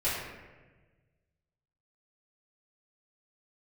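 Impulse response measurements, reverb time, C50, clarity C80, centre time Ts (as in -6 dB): 1.3 s, 0.5 dB, 3.0 dB, 77 ms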